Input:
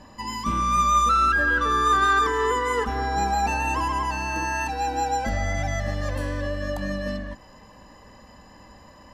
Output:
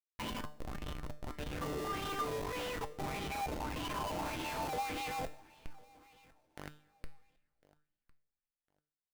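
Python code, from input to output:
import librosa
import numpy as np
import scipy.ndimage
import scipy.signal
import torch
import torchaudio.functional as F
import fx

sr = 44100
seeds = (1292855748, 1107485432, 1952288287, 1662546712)

y = scipy.signal.sosfilt(scipy.signal.butter(4, 8900.0, 'lowpass', fs=sr, output='sos'), x)
y = fx.dereverb_blind(y, sr, rt60_s=0.86)
y = fx.tilt_shelf(y, sr, db=8.0, hz=640.0)
y = fx.over_compress(y, sr, threshold_db=-29.0, ratio=-1.0)
y = (np.mod(10.0 ** (18.0 / 20.0) * y + 1.0, 2.0) - 1.0) / 10.0 ** (18.0 / 20.0)
y = fx.filter_sweep_bandpass(y, sr, from_hz=740.0, to_hz=5900.0, start_s=5.57, end_s=8.73, q=1.4)
y = fx.schmitt(y, sr, flips_db=-33.5)
y = fx.comb_fb(y, sr, f0_hz=150.0, decay_s=0.46, harmonics='all', damping=0.0, mix_pct=70)
y = fx.echo_feedback(y, sr, ms=1054, feedback_pct=22, wet_db=-23.5)
y = fx.rev_double_slope(y, sr, seeds[0], early_s=0.21, late_s=2.6, knee_db=-18, drr_db=16.0)
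y = fx.bell_lfo(y, sr, hz=1.7, low_hz=520.0, high_hz=3200.0, db=9)
y = y * librosa.db_to_amplitude(5.0)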